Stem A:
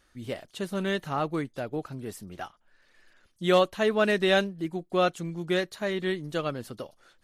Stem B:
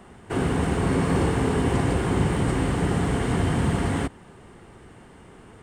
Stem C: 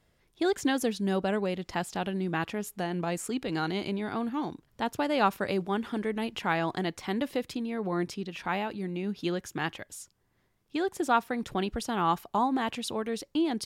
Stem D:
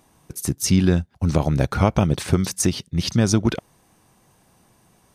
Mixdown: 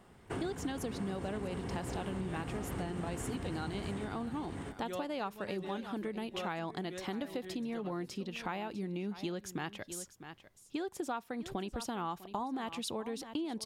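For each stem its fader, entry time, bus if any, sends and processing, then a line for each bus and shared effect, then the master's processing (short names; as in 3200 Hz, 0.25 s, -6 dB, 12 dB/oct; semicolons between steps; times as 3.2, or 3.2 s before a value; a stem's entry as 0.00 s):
-16.0 dB, 1.40 s, no send, echo send -19 dB, comb 5.5 ms, depth 50%
-6.0 dB, 0.00 s, no send, echo send -7 dB, limiter -18 dBFS, peak gain reduction 7.5 dB; upward expander 1.5:1, over -37 dBFS
+0.5 dB, 0.00 s, no send, echo send -17.5 dB, bell 1800 Hz -2.5 dB
off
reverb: off
echo: echo 0.649 s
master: compressor 6:1, threshold -35 dBFS, peak gain reduction 15.5 dB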